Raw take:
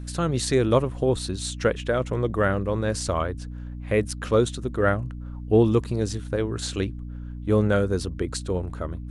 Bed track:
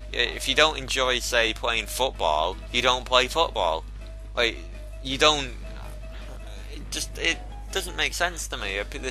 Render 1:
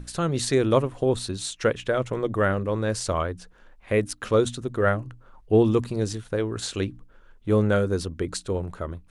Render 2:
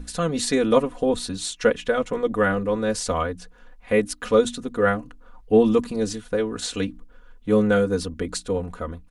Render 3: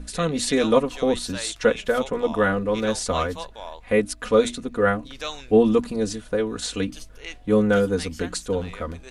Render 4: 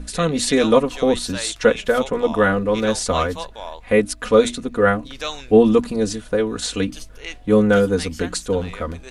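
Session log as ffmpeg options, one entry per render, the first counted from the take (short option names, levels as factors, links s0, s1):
-af "bandreject=f=60:t=h:w=6,bandreject=f=120:t=h:w=6,bandreject=f=180:t=h:w=6,bandreject=f=240:t=h:w=6,bandreject=f=300:t=h:w=6"
-af "aecho=1:1:4.1:0.88"
-filter_complex "[1:a]volume=0.211[s0];[0:a][s0]amix=inputs=2:normalize=0"
-af "volume=1.58,alimiter=limit=0.891:level=0:latency=1"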